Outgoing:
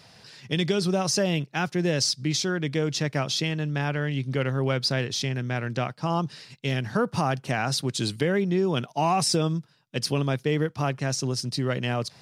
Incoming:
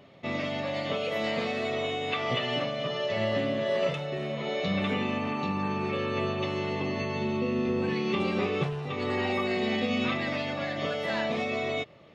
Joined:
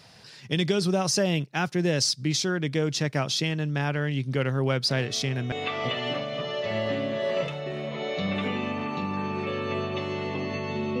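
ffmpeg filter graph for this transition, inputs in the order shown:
ffmpeg -i cue0.wav -i cue1.wav -filter_complex "[1:a]asplit=2[link_01][link_02];[0:a]apad=whole_dur=11,atrim=end=11,atrim=end=5.522[link_03];[link_02]atrim=start=1.978:end=7.46[link_04];[link_01]atrim=start=1.35:end=1.98,asetpts=PTS-STARTPTS,volume=-12.5dB,afade=type=in:duration=0.004:curve=hsin,afade=type=out:start_time=0.626:duration=0.004:curve=hsin,adelay=215649S[link_05];[link_03][link_04]acrossfade=duration=0.004:curve1=hsin:curve2=hsin[link_06];[link_06][link_05]amix=inputs=2:normalize=0" out.wav

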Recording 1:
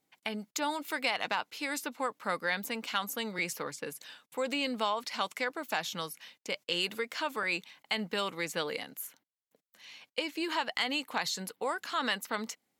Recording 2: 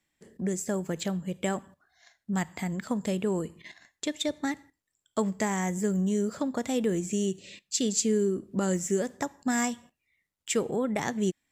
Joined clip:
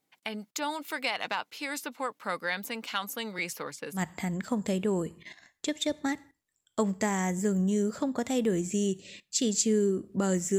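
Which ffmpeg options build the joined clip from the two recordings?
ffmpeg -i cue0.wav -i cue1.wav -filter_complex "[0:a]apad=whole_dur=10.58,atrim=end=10.58,atrim=end=4.02,asetpts=PTS-STARTPTS[link_01];[1:a]atrim=start=2.31:end=8.97,asetpts=PTS-STARTPTS[link_02];[link_01][link_02]acrossfade=duration=0.1:curve1=tri:curve2=tri" out.wav

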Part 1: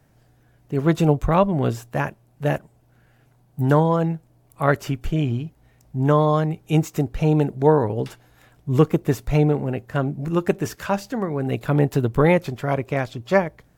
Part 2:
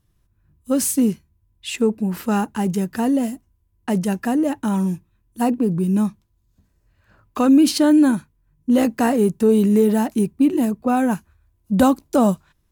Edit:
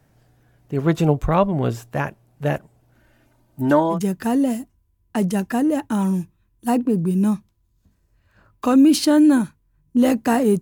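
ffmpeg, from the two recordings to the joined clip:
ffmpeg -i cue0.wav -i cue1.wav -filter_complex "[0:a]asettb=1/sr,asplit=3[link_01][link_02][link_03];[link_01]atrim=end=2.954[link_04];[link_02]atrim=start=2.95:end=3.99,asetpts=PTS-STARTPTS,afade=type=in:duration=0.004:curve=qsin,afade=type=out:start_time=1.036:duration=0.004:curve=qsin,aecho=1:1:3.3:0.77,atrim=end_sample=45864[link_05];[link_03]atrim=start=3.986[link_06];[link_04][link_05]acrossfade=duration=0.004:curve1=hsin:curve2=qsin[link_07];[link_07][link_06]acrossfade=duration=0.004:curve1=qsin:curve2=hsin,apad=whole_dur=10.61,atrim=end=10.61,atrim=end=3.99,asetpts=PTS-STARTPTS[link_08];[1:a]atrim=start=2.62:end=9.34,asetpts=PTS-STARTPTS[link_09];[link_08][link_09]acrossfade=duration=0.1:curve1=tri:curve2=tri" out.wav

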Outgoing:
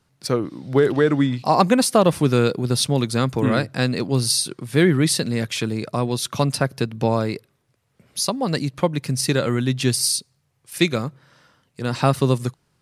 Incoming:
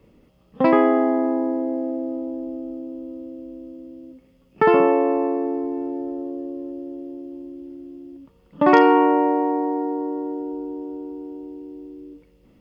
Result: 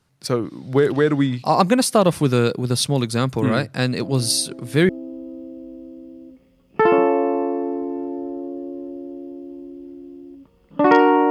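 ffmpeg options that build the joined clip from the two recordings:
ffmpeg -i cue0.wav -i cue1.wav -filter_complex "[1:a]asplit=2[link_01][link_02];[0:a]apad=whole_dur=11.3,atrim=end=11.3,atrim=end=4.892[link_03];[link_02]atrim=start=2.708:end=9.12[link_04];[link_01]atrim=start=1.83:end=2.71,asetpts=PTS-STARTPTS,volume=-8.5dB,afade=type=in:duration=0.004:curve=hsin,afade=type=out:start_time=0.876:duration=0.004:curve=hsin,adelay=176841S[link_05];[link_03][link_04]acrossfade=duration=0.004:curve1=hsin:curve2=hsin[link_06];[link_06][link_05]amix=inputs=2:normalize=0" out.wav

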